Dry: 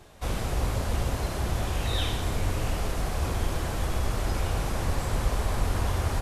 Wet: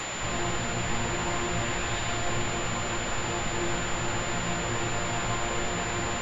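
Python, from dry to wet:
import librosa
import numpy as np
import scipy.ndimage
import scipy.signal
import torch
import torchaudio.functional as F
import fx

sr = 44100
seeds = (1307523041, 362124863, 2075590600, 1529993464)

p1 = fx.comb(x, sr, ms=1.1, depth=0.86, at=(0.79, 2.44))
p2 = fx.fold_sine(p1, sr, drive_db=19, ceiling_db=-11.0)
p3 = p1 + (p2 * librosa.db_to_amplitude(-10.0))
p4 = fx.resonator_bank(p3, sr, root=46, chord='fifth', decay_s=0.35)
p5 = fx.quant_dither(p4, sr, seeds[0], bits=6, dither='triangular')
p6 = fx.pwm(p5, sr, carrier_hz=7100.0)
y = p6 * librosa.db_to_amplitude(5.0)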